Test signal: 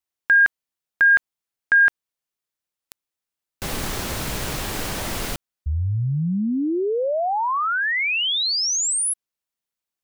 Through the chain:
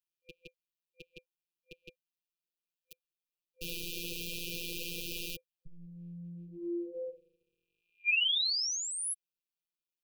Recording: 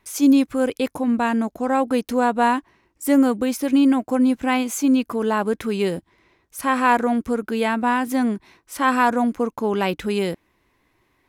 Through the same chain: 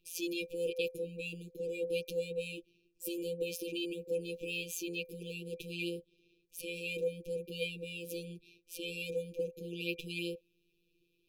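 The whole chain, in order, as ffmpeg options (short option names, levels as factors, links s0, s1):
-filter_complex "[0:a]afftfilt=real='hypot(re,im)*cos(PI*b)':imag='0':win_size=1024:overlap=0.75,afftfilt=real='re*(1-between(b*sr/4096,510,2400))':imag='im*(1-between(b*sr/4096,510,2400))':win_size=4096:overlap=0.75,acrossover=split=410|1300|2000[s0][s1][s2][s3];[s0]acompressor=threshold=0.00562:ratio=4:attack=44:release=40:knee=6:detection=peak[s4];[s4][s1][s2][s3]amix=inputs=4:normalize=0,equalizer=f=250:t=o:w=1:g=-9,equalizer=f=500:t=o:w=1:g=7,equalizer=f=2000:t=o:w=1:g=4,equalizer=f=8000:t=o:w=1:g=-9,volume=0.668"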